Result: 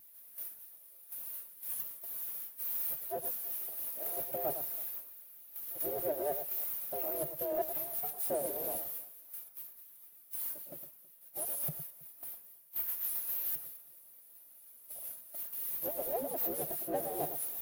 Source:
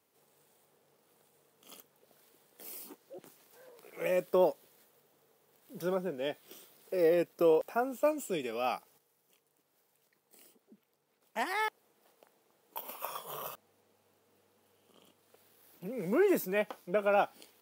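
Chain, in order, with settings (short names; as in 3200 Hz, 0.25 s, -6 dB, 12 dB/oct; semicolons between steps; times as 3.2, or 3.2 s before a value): minimum comb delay 1.9 ms; Chebyshev band-stop 550–9900 Hz, order 4; gate with hold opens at -58 dBFS; ring modulator 150 Hz; tilt +5.5 dB/oct; reverse; compressor 6:1, threshold -43 dBFS, peak gain reduction 20 dB; reverse; harmonic-percussive split harmonic -18 dB; power-law curve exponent 0.35; on a send: echo with dull and thin repeats by turns 0.108 s, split 1800 Hz, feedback 59%, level -7 dB; on the sum: spectral expander 1.5:1; gain +2 dB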